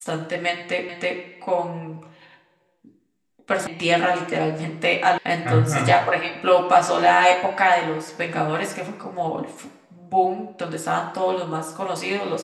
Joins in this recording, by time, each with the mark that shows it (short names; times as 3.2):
0.89 repeat of the last 0.32 s
3.67 sound cut off
5.18 sound cut off